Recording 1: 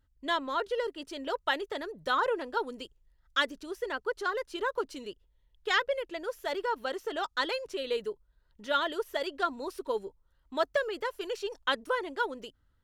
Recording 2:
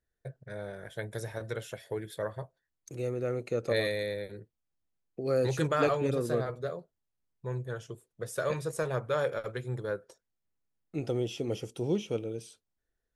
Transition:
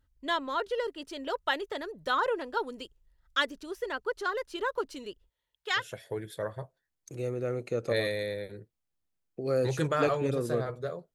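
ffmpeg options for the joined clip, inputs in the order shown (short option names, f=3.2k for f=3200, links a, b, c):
-filter_complex "[0:a]asplit=3[a][b][c];[a]afade=t=out:st=5.28:d=0.02[d];[b]highpass=f=760:p=1,afade=t=in:st=5.28:d=0.02,afade=t=out:st=5.89:d=0.02[e];[c]afade=t=in:st=5.89:d=0.02[f];[d][e][f]amix=inputs=3:normalize=0,apad=whole_dur=11.14,atrim=end=11.14,atrim=end=5.89,asetpts=PTS-STARTPTS[g];[1:a]atrim=start=1.53:end=6.94,asetpts=PTS-STARTPTS[h];[g][h]acrossfade=d=0.16:c1=tri:c2=tri"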